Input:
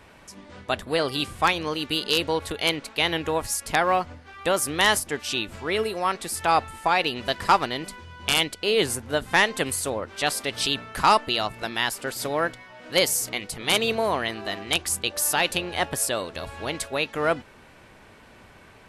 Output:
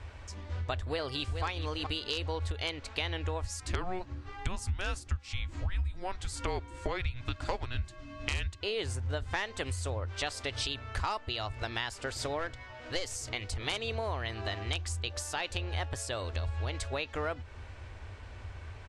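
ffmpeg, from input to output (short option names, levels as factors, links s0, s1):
-filter_complex "[0:a]asplit=2[s0][s1];[s1]afade=t=in:st=0.79:d=0.01,afade=t=out:st=1.44:d=0.01,aecho=0:1:420|840|1260:0.334965|0.0837414|0.0209353[s2];[s0][s2]amix=inputs=2:normalize=0,asettb=1/sr,asplit=3[s3][s4][s5];[s3]atrim=end=3.594[s6];[s4]atrim=start=3.59:end=8.61,asetpts=PTS-STARTPTS,afade=t=in:d=0.004:c=qsin,afade=t=out:st=5.016:d=0.004:c=qsin,afreqshift=-370[s7];[s5]atrim=start=8.606[s8];[s6][s7]acrossfade=d=0.004:c1=hsin:c2=qsin[s9];[s9][s8]acrossfade=d=0.004:c1=qsin:c2=hsin,asettb=1/sr,asplit=3[s10][s11][s12];[s10]atrim=end=12.394[s13];[s11]atrim=start=12.39:end=13.16,asetpts=PTS-STARTPTS,afade=t=in:d=0.004:c=qsin,afade=t=out:st=0.766:d=0.004:c=qsin,aeval=exprs='clip(val(0),-1,0.075)':c=same[s14];[s12]atrim=start=13.156[s15];[s13][s14]acrossfade=d=0.004:c1=hsin:c2=qsin[s16];[s16][s15]acrossfade=d=0.004:c1=qsin:c2=hsin,lowshelf=f=120:t=q:w=3:g=12,acompressor=threshold=0.0355:ratio=6,lowpass=f=7900:w=0.5412,lowpass=f=7900:w=1.3066,volume=0.794"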